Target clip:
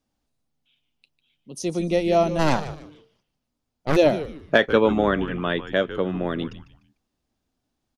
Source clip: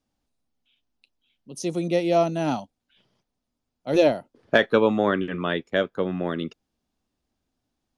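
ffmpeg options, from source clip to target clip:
-filter_complex "[0:a]asplit=3[a][b][c];[a]afade=t=out:st=2.38:d=0.02[d];[b]aeval=exprs='0.237*(cos(1*acos(clip(val(0)/0.237,-1,1)))-cos(1*PI/2))+0.0841*(cos(6*acos(clip(val(0)/0.237,-1,1)))-cos(6*PI/2))':c=same,afade=t=in:st=2.38:d=0.02,afade=t=out:st=3.95:d=0.02[e];[c]afade=t=in:st=3.95:d=0.02[f];[d][e][f]amix=inputs=3:normalize=0,asplit=2[g][h];[h]asplit=3[i][j][k];[i]adelay=149,afreqshift=-150,volume=-13dB[l];[j]adelay=298,afreqshift=-300,volume=-23.5dB[m];[k]adelay=447,afreqshift=-450,volume=-33.9dB[n];[l][m][n]amix=inputs=3:normalize=0[o];[g][o]amix=inputs=2:normalize=0,volume=1dB"

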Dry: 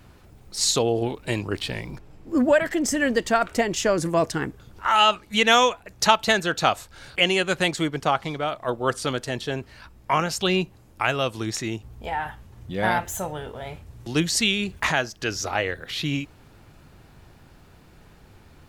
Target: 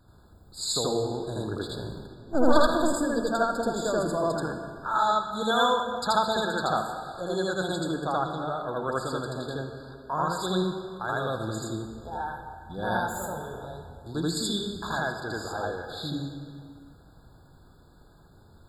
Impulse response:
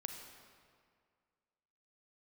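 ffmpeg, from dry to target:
-filter_complex "[0:a]asettb=1/sr,asplit=3[a][b][c];[a]atrim=end=1.904[d];[b]atrim=start=1.9:end=2.83,asetpts=PTS-STARTPTS,afade=t=in:d=0.004:c=qsin,afade=t=out:st=0.926:d=0.004:c=qsin,aeval=exprs='0.447*(cos(1*acos(clip(val(0)/0.447,-1,1)))-cos(1*PI/2))+0.2*(cos(6*acos(clip(val(0)/0.447,-1,1)))-cos(6*PI/2))':c=same[e];[c]atrim=start=2.826[f];[d][e]acrossfade=d=0.004:c1=hsin:c2=qsin[g];[g][f]acrossfade=d=0.004:c1=qsin:c2=hsin,asplit=2[h][i];[1:a]atrim=start_sample=2205,adelay=81[j];[i][j]afir=irnorm=-1:irlink=0,volume=5.5dB[k];[h][k]amix=inputs=2:normalize=0,afftfilt=real='re*eq(mod(floor(b*sr/1024/1700),2),0)':imag='im*eq(mod(floor(b*sr/1024/1700),2),0)':win_size=1024:overlap=0.75,volume=-9dB"

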